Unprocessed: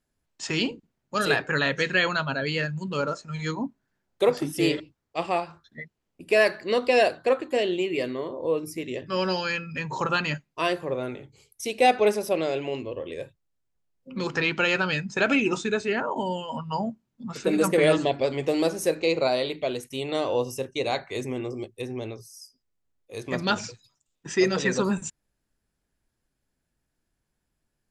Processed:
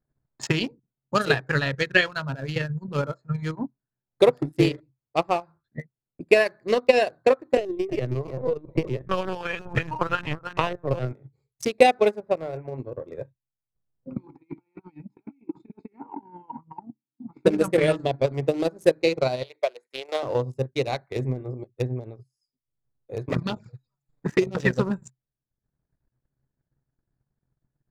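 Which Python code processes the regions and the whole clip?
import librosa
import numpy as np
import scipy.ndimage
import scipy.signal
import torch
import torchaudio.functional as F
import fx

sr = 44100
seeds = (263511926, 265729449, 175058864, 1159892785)

y = fx.chain(x, sr, fx.doubler(ms=19.0, db=-11.5),
    fx.band_widen(depth_pct=70), at=(1.92, 2.56))
y = fx.chain(y, sr, fx.echo_single(ms=321, db=-11.0),
    fx.lpc_vocoder(seeds[0], excitation='pitch_kept', order=16),
    fx.band_squash(depth_pct=70), at=(7.57, 11.13))
y = fx.chain(y, sr, fx.lowpass(hz=2500.0, slope=24),
    fx.peak_eq(hz=320.0, db=-6.0, octaves=1.0), at=(12.2, 12.78))
y = fx.chain(y, sr, fx.high_shelf(hz=4700.0, db=7.0),
    fx.over_compress(threshold_db=-30.0, ratio=-0.5),
    fx.vowel_filter(vowel='u'), at=(14.17, 17.46))
y = fx.chain(y, sr, fx.highpass(hz=500.0, slope=24),
    fx.peak_eq(hz=2300.0, db=2.5, octaves=0.41), at=(19.43, 20.23))
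y = fx.chain(y, sr, fx.env_flanger(rest_ms=7.4, full_db=-21.0),
    fx.band_squash(depth_pct=70), at=(23.29, 24.55))
y = fx.wiener(y, sr, points=15)
y = fx.peak_eq(y, sr, hz=130.0, db=14.5, octaves=0.3)
y = fx.transient(y, sr, attack_db=11, sustain_db=-11)
y = y * 10.0 ** (-3.5 / 20.0)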